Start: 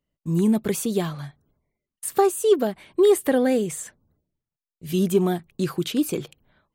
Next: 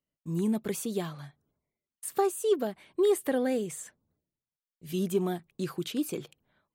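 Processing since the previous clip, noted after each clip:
low-shelf EQ 65 Hz −12 dB
level −7.5 dB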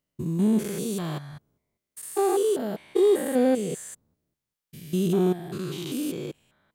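spectrum averaged block by block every 200 ms
level +8 dB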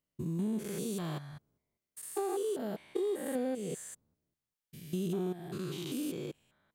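downward compressor 5 to 1, threshold −25 dBFS, peak gain reduction 8 dB
level −6 dB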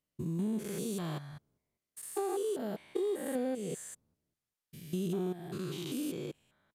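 downsampling to 32,000 Hz

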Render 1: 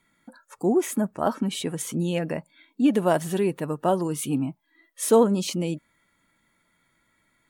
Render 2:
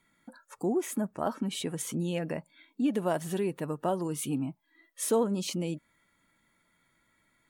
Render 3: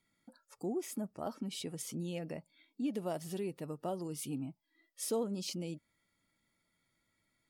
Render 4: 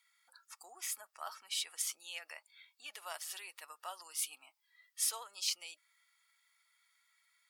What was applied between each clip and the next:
downward compressor 1.5 to 1, threshold −31 dBFS, peak gain reduction 6.5 dB; level −2.5 dB
thirty-one-band graphic EQ 100 Hz +6 dB, 1,000 Hz −6 dB, 1,600 Hz −8 dB, 5,000 Hz +10 dB, 12,500 Hz +3 dB; level −8 dB
high-pass filter 1,100 Hz 24 dB per octave; level +7 dB

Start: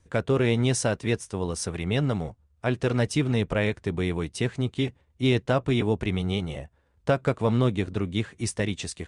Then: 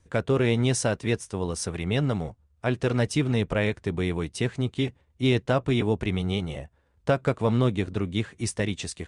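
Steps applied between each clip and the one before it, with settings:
no processing that can be heard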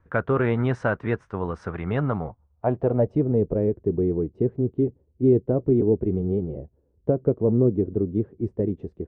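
low-pass filter sweep 1,400 Hz → 400 Hz, 0:01.89–0:03.59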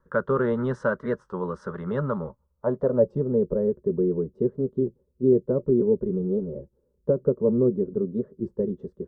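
phaser with its sweep stopped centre 480 Hz, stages 8
hollow resonant body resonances 360/580/3,400 Hz, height 8 dB, ringing for 75 ms
wow of a warped record 33 1/3 rpm, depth 100 cents

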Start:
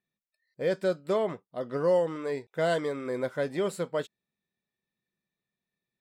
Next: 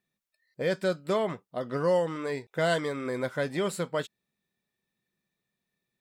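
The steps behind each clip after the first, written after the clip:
dynamic equaliser 450 Hz, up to −6 dB, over −37 dBFS, Q 0.74
level +4.5 dB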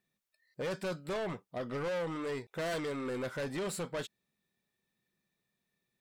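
soft clipping −32.5 dBFS, distortion −6 dB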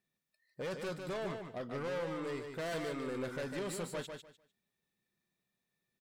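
repeating echo 150 ms, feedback 21%, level −6 dB
level −3.5 dB

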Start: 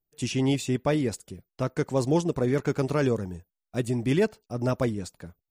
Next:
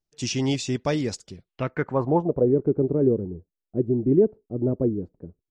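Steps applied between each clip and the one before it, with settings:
low-pass filter sweep 5,700 Hz → 380 Hz, 0:01.24–0:02.56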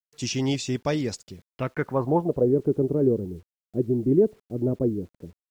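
bit-depth reduction 10 bits, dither none
level −1 dB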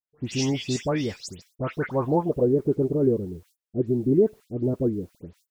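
all-pass dispersion highs, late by 143 ms, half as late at 2,600 Hz

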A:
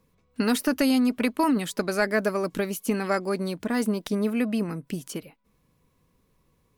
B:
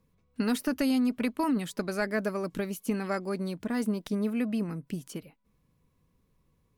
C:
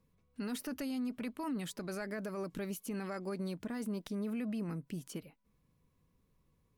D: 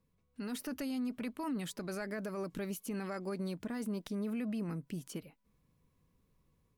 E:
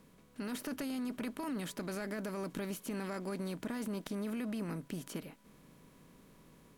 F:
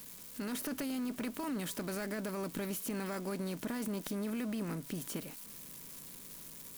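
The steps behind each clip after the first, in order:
bass and treble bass +5 dB, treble −1 dB; level −6.5 dB
brickwall limiter −27.5 dBFS, peak gain reduction 10 dB; level −3.5 dB
automatic gain control gain up to 4 dB; level −3.5 dB
compressor on every frequency bin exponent 0.6; level −3 dB
spike at every zero crossing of −40.5 dBFS; level +1 dB

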